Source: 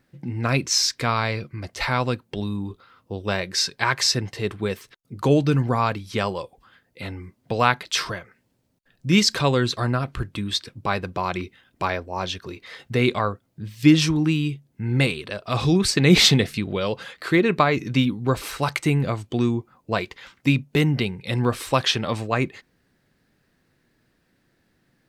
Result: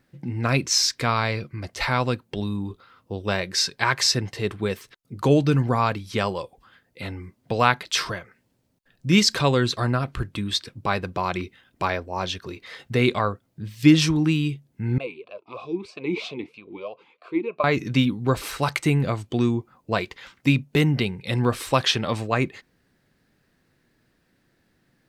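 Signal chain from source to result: 14.98–17.64 vowel sweep a-u 3.1 Hz

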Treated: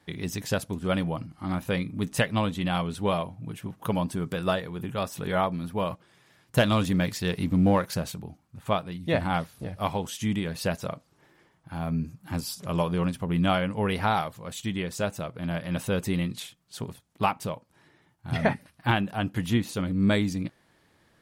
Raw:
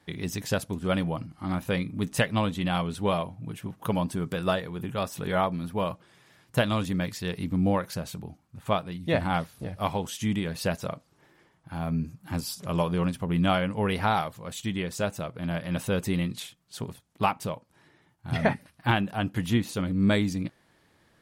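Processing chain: 5.92–8.12 sample leveller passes 1

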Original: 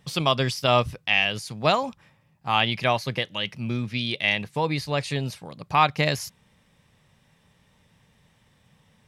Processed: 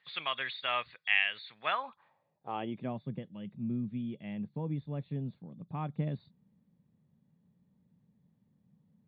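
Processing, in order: nonlinear frequency compression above 3300 Hz 4:1; band-pass sweep 1900 Hz -> 200 Hz, 1.63–2.95; gain -1.5 dB

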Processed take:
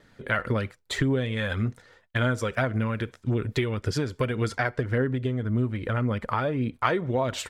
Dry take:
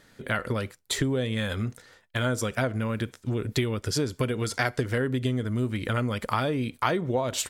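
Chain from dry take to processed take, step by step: gate with hold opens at -51 dBFS; LPF 2800 Hz 6 dB/oct, from 4.55 s 1200 Hz, from 6.84 s 2900 Hz; dynamic EQ 1800 Hz, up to +4 dB, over -43 dBFS, Q 1; phaser 1.8 Hz, delay 2.4 ms, feedback 32%

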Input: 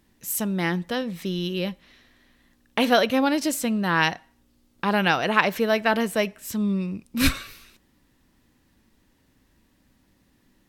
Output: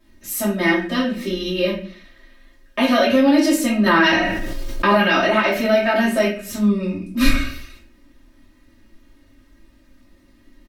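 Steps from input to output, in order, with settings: high shelf 6100 Hz -5.5 dB; notches 60/120/180/240/300 Hz; comb 3.2 ms, depth 96%; limiter -12 dBFS, peak gain reduction 11 dB; reverb RT60 0.45 s, pre-delay 5 ms, DRR -8 dB; 3.86–4.97 fast leveller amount 70%; gain -5 dB

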